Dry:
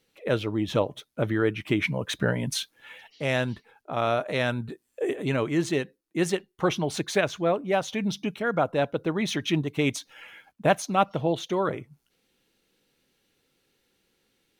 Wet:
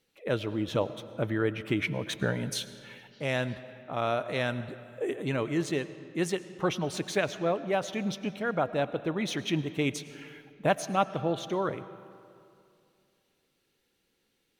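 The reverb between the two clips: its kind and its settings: algorithmic reverb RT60 2.5 s, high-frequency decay 0.65×, pre-delay 65 ms, DRR 14 dB; trim -4 dB

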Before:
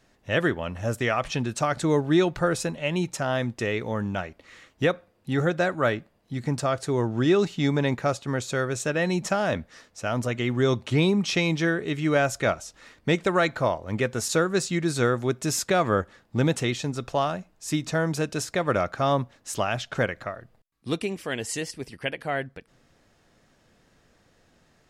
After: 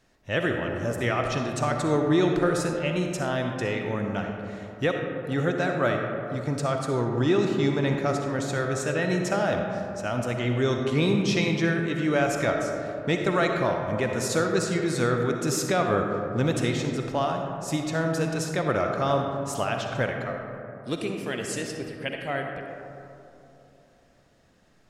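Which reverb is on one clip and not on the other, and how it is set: algorithmic reverb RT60 3 s, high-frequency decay 0.3×, pre-delay 20 ms, DRR 2.5 dB; trim -2.5 dB

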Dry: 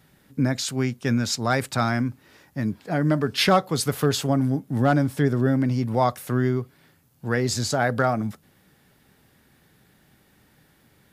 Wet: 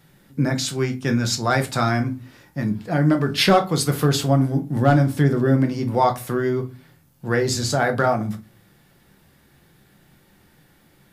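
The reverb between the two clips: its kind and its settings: simulated room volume 130 m³, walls furnished, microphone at 0.83 m; trim +1.5 dB

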